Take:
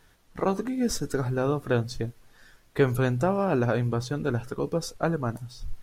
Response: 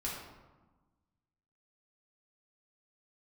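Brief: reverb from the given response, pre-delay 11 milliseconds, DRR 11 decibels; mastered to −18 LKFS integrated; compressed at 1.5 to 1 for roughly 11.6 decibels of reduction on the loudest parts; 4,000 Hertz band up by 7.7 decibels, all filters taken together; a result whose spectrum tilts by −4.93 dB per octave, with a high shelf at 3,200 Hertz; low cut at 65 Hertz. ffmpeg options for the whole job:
-filter_complex "[0:a]highpass=65,highshelf=frequency=3200:gain=7,equalizer=frequency=4000:width_type=o:gain=4,acompressor=threshold=-49dB:ratio=1.5,asplit=2[link_01][link_02];[1:a]atrim=start_sample=2205,adelay=11[link_03];[link_02][link_03]afir=irnorm=-1:irlink=0,volume=-13.5dB[link_04];[link_01][link_04]amix=inputs=2:normalize=0,volume=18.5dB"

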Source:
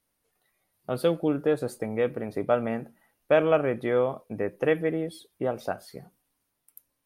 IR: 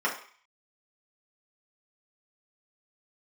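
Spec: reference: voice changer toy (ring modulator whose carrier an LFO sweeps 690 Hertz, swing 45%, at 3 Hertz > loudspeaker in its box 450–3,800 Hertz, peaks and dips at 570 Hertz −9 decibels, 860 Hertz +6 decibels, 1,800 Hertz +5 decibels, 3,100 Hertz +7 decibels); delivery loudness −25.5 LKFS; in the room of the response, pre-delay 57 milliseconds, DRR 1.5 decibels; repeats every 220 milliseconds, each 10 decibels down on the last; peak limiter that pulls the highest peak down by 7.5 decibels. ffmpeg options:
-filter_complex "[0:a]alimiter=limit=-16.5dB:level=0:latency=1,aecho=1:1:220|440|660|880:0.316|0.101|0.0324|0.0104,asplit=2[link_01][link_02];[1:a]atrim=start_sample=2205,adelay=57[link_03];[link_02][link_03]afir=irnorm=-1:irlink=0,volume=-13dB[link_04];[link_01][link_04]amix=inputs=2:normalize=0,aeval=exprs='val(0)*sin(2*PI*690*n/s+690*0.45/3*sin(2*PI*3*n/s))':channel_layout=same,highpass=450,equalizer=frequency=570:width_type=q:width=4:gain=-9,equalizer=frequency=860:width_type=q:width=4:gain=6,equalizer=frequency=1800:width_type=q:width=4:gain=5,equalizer=frequency=3100:width_type=q:width=4:gain=7,lowpass=frequency=3800:width=0.5412,lowpass=frequency=3800:width=1.3066,volume=4.5dB"

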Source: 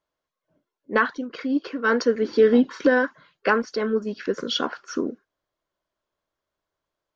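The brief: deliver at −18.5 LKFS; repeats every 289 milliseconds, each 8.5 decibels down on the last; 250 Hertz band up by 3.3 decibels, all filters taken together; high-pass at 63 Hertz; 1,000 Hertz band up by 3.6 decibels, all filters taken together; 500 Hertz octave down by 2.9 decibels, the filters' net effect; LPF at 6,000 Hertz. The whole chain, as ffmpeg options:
ffmpeg -i in.wav -af "highpass=63,lowpass=6000,equalizer=frequency=250:width_type=o:gain=4.5,equalizer=frequency=500:width_type=o:gain=-5.5,equalizer=frequency=1000:width_type=o:gain=5.5,aecho=1:1:289|578|867|1156:0.376|0.143|0.0543|0.0206,volume=3dB" out.wav

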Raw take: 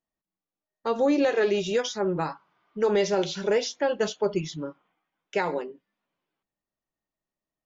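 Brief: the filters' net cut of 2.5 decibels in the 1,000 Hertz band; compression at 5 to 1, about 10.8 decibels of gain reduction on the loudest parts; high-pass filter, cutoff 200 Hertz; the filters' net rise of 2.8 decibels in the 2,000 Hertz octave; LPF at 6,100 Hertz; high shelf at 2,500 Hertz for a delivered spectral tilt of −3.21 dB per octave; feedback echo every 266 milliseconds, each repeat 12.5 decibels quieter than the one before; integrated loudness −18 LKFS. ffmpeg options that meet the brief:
ffmpeg -i in.wav -af "highpass=200,lowpass=6100,equalizer=frequency=1000:width_type=o:gain=-4,equalizer=frequency=2000:width_type=o:gain=6.5,highshelf=frequency=2500:gain=-4,acompressor=threshold=-32dB:ratio=5,aecho=1:1:266|532|798:0.237|0.0569|0.0137,volume=18.5dB" out.wav

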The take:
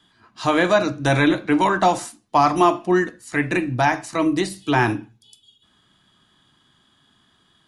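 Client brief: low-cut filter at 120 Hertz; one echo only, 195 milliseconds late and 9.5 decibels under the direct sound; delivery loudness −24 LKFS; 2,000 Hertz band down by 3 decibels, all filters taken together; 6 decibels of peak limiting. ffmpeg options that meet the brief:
ffmpeg -i in.wav -af "highpass=120,equalizer=frequency=2000:width_type=o:gain=-4,alimiter=limit=-10.5dB:level=0:latency=1,aecho=1:1:195:0.335,volume=-2dB" out.wav

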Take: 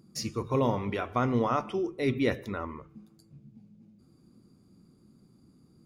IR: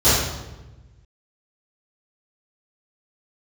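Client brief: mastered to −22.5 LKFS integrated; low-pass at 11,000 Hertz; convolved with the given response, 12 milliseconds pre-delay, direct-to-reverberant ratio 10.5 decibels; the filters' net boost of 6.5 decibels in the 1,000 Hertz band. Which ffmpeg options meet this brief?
-filter_complex "[0:a]lowpass=11000,equalizer=frequency=1000:width_type=o:gain=8,asplit=2[link_01][link_02];[1:a]atrim=start_sample=2205,adelay=12[link_03];[link_02][link_03]afir=irnorm=-1:irlink=0,volume=-33dB[link_04];[link_01][link_04]amix=inputs=2:normalize=0,volume=4dB"

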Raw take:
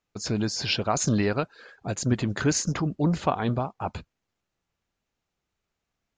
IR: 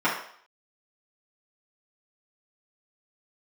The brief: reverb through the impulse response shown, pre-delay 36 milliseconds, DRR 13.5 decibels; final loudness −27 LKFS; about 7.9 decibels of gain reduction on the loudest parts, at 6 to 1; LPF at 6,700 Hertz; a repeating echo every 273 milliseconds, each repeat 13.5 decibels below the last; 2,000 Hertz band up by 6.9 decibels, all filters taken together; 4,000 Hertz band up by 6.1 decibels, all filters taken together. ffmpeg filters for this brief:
-filter_complex "[0:a]lowpass=6700,equalizer=frequency=2000:width_type=o:gain=7.5,equalizer=frequency=4000:width_type=o:gain=6.5,acompressor=threshold=-25dB:ratio=6,aecho=1:1:273|546:0.211|0.0444,asplit=2[link_01][link_02];[1:a]atrim=start_sample=2205,adelay=36[link_03];[link_02][link_03]afir=irnorm=-1:irlink=0,volume=-29.5dB[link_04];[link_01][link_04]amix=inputs=2:normalize=0,volume=2.5dB"

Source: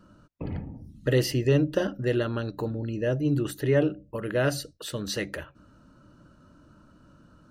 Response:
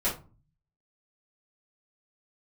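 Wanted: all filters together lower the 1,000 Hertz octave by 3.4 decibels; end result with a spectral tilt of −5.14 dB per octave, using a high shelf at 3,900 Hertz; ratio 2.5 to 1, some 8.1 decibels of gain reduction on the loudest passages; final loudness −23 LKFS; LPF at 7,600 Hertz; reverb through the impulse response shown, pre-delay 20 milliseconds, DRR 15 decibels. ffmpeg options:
-filter_complex "[0:a]lowpass=7600,equalizer=frequency=1000:width_type=o:gain=-6,highshelf=frequency=3900:gain=8,acompressor=threshold=-30dB:ratio=2.5,asplit=2[link_01][link_02];[1:a]atrim=start_sample=2205,adelay=20[link_03];[link_02][link_03]afir=irnorm=-1:irlink=0,volume=-24dB[link_04];[link_01][link_04]amix=inputs=2:normalize=0,volume=10.5dB"

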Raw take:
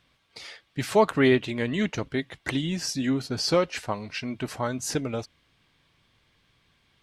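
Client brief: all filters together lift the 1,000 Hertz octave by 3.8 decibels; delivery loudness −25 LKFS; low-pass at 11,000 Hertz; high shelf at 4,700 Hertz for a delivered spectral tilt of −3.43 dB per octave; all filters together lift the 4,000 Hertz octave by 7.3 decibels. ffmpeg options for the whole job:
ffmpeg -i in.wav -af "lowpass=11000,equalizer=frequency=1000:width_type=o:gain=4,equalizer=frequency=4000:width_type=o:gain=4.5,highshelf=frequency=4700:gain=8.5,volume=-0.5dB" out.wav

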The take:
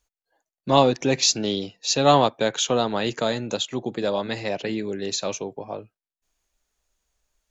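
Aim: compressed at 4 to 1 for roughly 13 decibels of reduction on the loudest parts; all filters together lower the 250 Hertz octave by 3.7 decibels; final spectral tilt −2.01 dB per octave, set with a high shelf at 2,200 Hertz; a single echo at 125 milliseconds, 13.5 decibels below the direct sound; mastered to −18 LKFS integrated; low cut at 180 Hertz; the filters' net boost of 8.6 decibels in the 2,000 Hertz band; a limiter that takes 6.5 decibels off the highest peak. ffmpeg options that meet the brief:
ffmpeg -i in.wav -af "highpass=180,equalizer=frequency=250:width_type=o:gain=-3.5,equalizer=frequency=2000:width_type=o:gain=8.5,highshelf=frequency=2200:gain=4.5,acompressor=threshold=-26dB:ratio=4,alimiter=limit=-19.5dB:level=0:latency=1,aecho=1:1:125:0.211,volume=13dB" out.wav

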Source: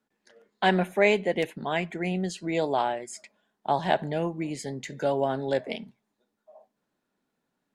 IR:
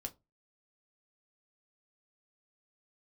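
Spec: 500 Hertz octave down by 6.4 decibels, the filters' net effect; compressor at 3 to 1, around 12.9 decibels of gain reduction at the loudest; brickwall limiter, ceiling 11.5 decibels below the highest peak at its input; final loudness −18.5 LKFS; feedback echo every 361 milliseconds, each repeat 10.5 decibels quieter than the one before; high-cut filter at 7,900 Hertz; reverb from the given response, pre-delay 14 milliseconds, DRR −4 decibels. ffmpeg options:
-filter_complex "[0:a]lowpass=7900,equalizer=frequency=500:width_type=o:gain=-8.5,acompressor=threshold=-37dB:ratio=3,alimiter=level_in=7.5dB:limit=-24dB:level=0:latency=1,volume=-7.5dB,aecho=1:1:361|722|1083:0.299|0.0896|0.0269,asplit=2[link_01][link_02];[1:a]atrim=start_sample=2205,adelay=14[link_03];[link_02][link_03]afir=irnorm=-1:irlink=0,volume=6.5dB[link_04];[link_01][link_04]amix=inputs=2:normalize=0,volume=18.5dB"

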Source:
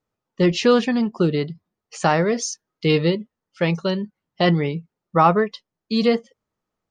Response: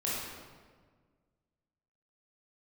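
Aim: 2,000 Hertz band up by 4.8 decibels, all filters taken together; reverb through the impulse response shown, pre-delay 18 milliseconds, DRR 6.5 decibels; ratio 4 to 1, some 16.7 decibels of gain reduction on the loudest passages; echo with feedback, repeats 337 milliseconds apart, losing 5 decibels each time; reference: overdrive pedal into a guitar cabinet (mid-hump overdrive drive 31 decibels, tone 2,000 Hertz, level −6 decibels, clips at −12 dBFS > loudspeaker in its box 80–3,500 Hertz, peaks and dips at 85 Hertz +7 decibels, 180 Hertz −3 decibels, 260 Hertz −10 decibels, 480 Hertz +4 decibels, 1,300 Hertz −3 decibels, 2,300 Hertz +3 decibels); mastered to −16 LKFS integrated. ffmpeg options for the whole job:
-filter_complex "[0:a]equalizer=frequency=2000:width_type=o:gain=5,acompressor=threshold=-31dB:ratio=4,aecho=1:1:337|674|1011|1348|1685|2022|2359:0.562|0.315|0.176|0.0988|0.0553|0.031|0.0173,asplit=2[link_01][link_02];[1:a]atrim=start_sample=2205,adelay=18[link_03];[link_02][link_03]afir=irnorm=-1:irlink=0,volume=-12.5dB[link_04];[link_01][link_04]amix=inputs=2:normalize=0,asplit=2[link_05][link_06];[link_06]highpass=frequency=720:poles=1,volume=31dB,asoftclip=type=tanh:threshold=-12dB[link_07];[link_05][link_07]amix=inputs=2:normalize=0,lowpass=frequency=2000:poles=1,volume=-6dB,highpass=80,equalizer=frequency=85:width_type=q:width=4:gain=7,equalizer=frequency=180:width_type=q:width=4:gain=-3,equalizer=frequency=260:width_type=q:width=4:gain=-10,equalizer=frequency=480:width_type=q:width=4:gain=4,equalizer=frequency=1300:width_type=q:width=4:gain=-3,equalizer=frequency=2300:width_type=q:width=4:gain=3,lowpass=frequency=3500:width=0.5412,lowpass=frequency=3500:width=1.3066,volume=4.5dB"

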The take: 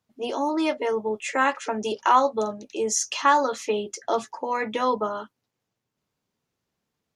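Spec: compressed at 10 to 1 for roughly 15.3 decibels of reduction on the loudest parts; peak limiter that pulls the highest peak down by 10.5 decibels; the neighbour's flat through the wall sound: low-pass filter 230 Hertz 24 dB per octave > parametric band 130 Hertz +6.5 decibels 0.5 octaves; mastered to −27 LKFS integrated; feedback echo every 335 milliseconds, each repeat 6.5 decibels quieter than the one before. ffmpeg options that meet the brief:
ffmpeg -i in.wav -af "acompressor=threshold=-29dB:ratio=10,alimiter=level_in=1dB:limit=-24dB:level=0:latency=1,volume=-1dB,lowpass=frequency=230:width=0.5412,lowpass=frequency=230:width=1.3066,equalizer=frequency=130:width_type=o:width=0.5:gain=6.5,aecho=1:1:335|670|1005|1340|1675|2010:0.473|0.222|0.105|0.0491|0.0231|0.0109,volume=20.5dB" out.wav

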